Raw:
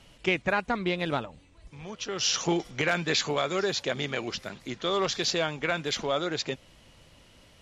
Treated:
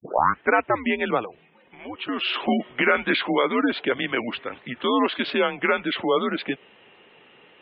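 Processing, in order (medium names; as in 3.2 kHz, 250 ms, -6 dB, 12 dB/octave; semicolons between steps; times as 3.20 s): tape start-up on the opening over 0.51 s; mistuned SSB -120 Hz 350–3300 Hz; spectral gate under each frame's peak -25 dB strong; trim +7.5 dB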